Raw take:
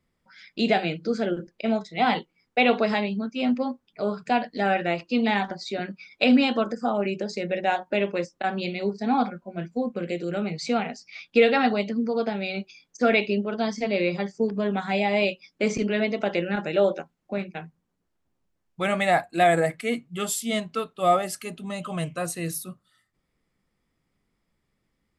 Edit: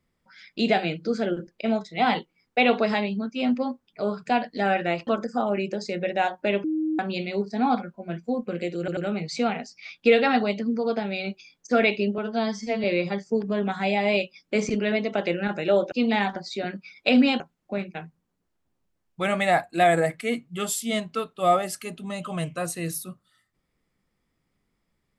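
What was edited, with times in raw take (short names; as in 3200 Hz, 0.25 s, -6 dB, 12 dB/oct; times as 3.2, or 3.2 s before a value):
5.07–6.55 move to 17
8.12–8.47 bleep 313 Hz -22.5 dBFS
10.27 stutter 0.09 s, 3 plays
13.48–13.92 stretch 1.5×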